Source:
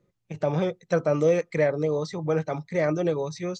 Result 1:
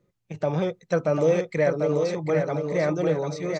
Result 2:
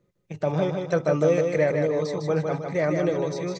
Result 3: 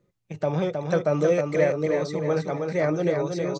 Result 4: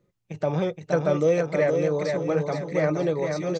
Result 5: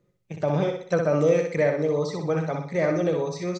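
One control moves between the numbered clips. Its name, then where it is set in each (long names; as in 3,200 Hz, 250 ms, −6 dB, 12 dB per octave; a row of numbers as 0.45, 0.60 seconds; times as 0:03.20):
repeating echo, delay time: 744, 155, 316, 470, 62 milliseconds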